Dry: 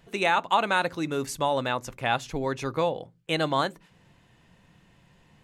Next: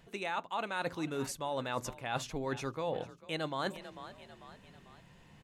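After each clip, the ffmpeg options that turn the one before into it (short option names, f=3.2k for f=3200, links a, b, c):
-filter_complex "[0:a]asplit=4[a][b][c][d];[b]adelay=445,afreqshift=33,volume=-23dB[e];[c]adelay=890,afreqshift=66,volume=-29.2dB[f];[d]adelay=1335,afreqshift=99,volume=-35.4dB[g];[a][e][f][g]amix=inputs=4:normalize=0,areverse,acompressor=threshold=-32dB:ratio=12,areverse"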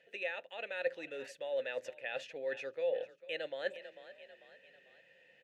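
-filter_complex "[0:a]asplit=3[a][b][c];[a]bandpass=f=530:t=q:w=8,volume=0dB[d];[b]bandpass=f=1.84k:t=q:w=8,volume=-6dB[e];[c]bandpass=f=2.48k:t=q:w=8,volume=-9dB[f];[d][e][f]amix=inputs=3:normalize=0,tiltshelf=f=730:g=-5.5,volume=7dB"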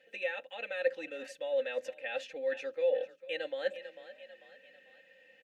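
-af "aecho=1:1:3.8:0.8"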